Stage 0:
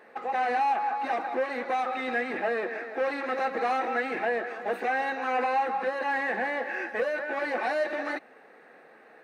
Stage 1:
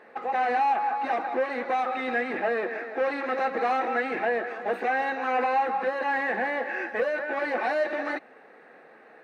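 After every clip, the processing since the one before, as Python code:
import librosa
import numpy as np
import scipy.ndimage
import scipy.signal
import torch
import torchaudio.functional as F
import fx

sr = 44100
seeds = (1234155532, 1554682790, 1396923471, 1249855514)

y = fx.high_shelf(x, sr, hz=6000.0, db=-9.0)
y = y * librosa.db_to_amplitude(2.0)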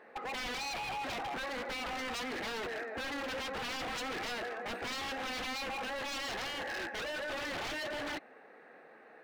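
y = 10.0 ** (-29.0 / 20.0) * (np.abs((x / 10.0 ** (-29.0 / 20.0) + 3.0) % 4.0 - 2.0) - 1.0)
y = y * librosa.db_to_amplitude(-4.5)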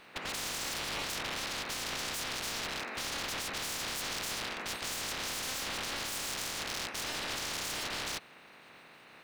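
y = fx.spec_clip(x, sr, under_db=28)
y = y * librosa.db_to_amplitude(1.5)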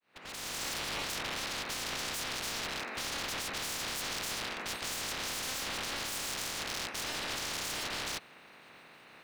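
y = fx.fade_in_head(x, sr, length_s=0.63)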